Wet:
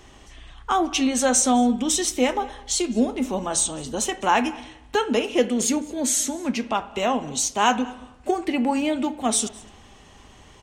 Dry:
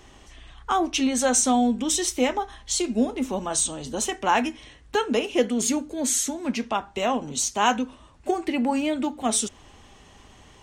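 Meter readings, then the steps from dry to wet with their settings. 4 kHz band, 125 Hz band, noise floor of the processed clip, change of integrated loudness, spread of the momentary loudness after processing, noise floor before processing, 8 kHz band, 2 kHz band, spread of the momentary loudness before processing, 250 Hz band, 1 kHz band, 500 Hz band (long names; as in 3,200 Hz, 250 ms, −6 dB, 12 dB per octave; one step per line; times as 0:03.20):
+1.5 dB, +1.5 dB, −49 dBFS, +1.5 dB, 8 LU, −52 dBFS, +1.5 dB, +1.5 dB, 7 LU, +1.5 dB, +1.5 dB, +1.5 dB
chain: single-tap delay 209 ms −23.5 dB
spring reverb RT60 1 s, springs 32/57 ms, chirp 75 ms, DRR 15.5 dB
level +1.5 dB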